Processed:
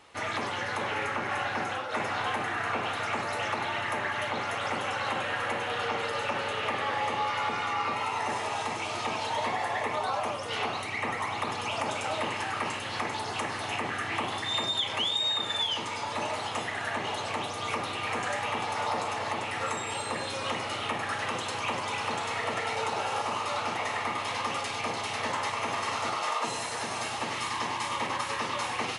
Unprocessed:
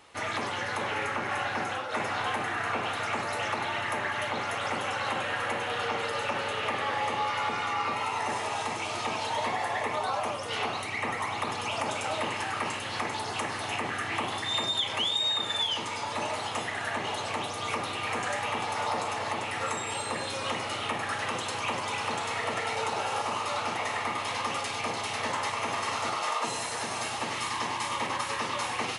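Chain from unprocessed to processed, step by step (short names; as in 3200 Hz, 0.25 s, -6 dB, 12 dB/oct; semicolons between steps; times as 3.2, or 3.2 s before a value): high shelf 9800 Hz -5.5 dB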